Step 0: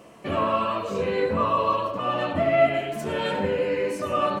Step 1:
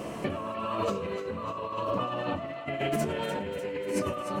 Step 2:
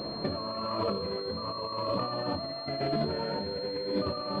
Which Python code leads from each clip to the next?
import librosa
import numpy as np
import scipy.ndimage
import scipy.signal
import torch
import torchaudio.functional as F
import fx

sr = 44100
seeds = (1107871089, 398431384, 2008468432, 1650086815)

y1 = fx.low_shelf(x, sr, hz=500.0, db=4.5)
y1 = fx.over_compress(y1, sr, threshold_db=-33.0, ratio=-1.0)
y1 = fx.echo_thinned(y1, sr, ms=298, feedback_pct=67, hz=1100.0, wet_db=-9.5)
y2 = fx.air_absorb(y1, sr, metres=240.0)
y2 = fx.pwm(y2, sr, carrier_hz=4200.0)